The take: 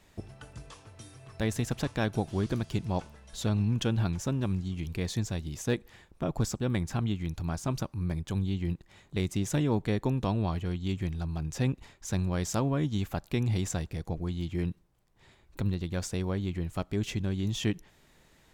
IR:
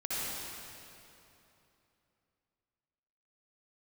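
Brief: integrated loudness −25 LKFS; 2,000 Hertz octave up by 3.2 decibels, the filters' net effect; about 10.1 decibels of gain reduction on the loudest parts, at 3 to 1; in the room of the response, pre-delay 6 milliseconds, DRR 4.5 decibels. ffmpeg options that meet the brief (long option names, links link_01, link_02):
-filter_complex "[0:a]equalizer=frequency=2000:width_type=o:gain=4,acompressor=threshold=-37dB:ratio=3,asplit=2[link_01][link_02];[1:a]atrim=start_sample=2205,adelay=6[link_03];[link_02][link_03]afir=irnorm=-1:irlink=0,volume=-10.5dB[link_04];[link_01][link_04]amix=inputs=2:normalize=0,volume=14dB"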